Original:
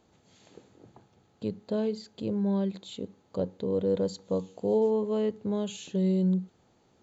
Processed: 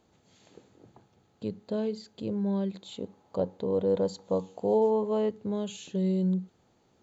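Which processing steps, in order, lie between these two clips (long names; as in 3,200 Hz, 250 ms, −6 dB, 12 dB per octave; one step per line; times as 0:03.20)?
0:02.85–0:05.29: parametric band 820 Hz +8 dB 1.1 octaves
level −1.5 dB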